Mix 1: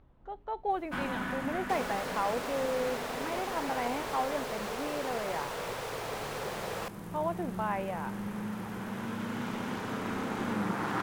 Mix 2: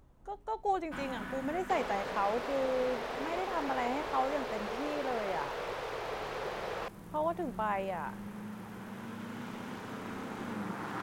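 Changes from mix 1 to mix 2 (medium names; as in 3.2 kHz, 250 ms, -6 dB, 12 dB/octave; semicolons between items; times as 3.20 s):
speech: remove low-pass 3.9 kHz 24 dB/octave; first sound -6.5 dB; second sound: add distance through air 130 m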